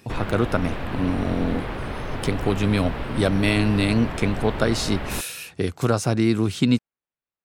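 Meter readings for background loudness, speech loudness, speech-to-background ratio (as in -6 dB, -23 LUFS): -31.0 LUFS, -23.5 LUFS, 7.5 dB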